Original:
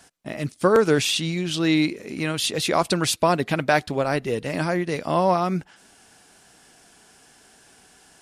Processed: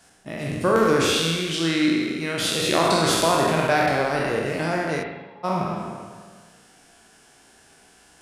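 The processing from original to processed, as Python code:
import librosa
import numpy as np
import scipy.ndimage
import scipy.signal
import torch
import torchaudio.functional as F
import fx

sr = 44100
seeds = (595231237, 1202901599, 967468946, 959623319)

y = fx.spec_trails(x, sr, decay_s=1.63)
y = fx.octave_resonator(y, sr, note='G#', decay_s=0.46, at=(5.02, 5.43), fade=0.02)
y = fx.rev_spring(y, sr, rt60_s=1.0, pass_ms=(36, 49), chirp_ms=60, drr_db=2.5)
y = F.gain(torch.from_numpy(y), -4.5).numpy()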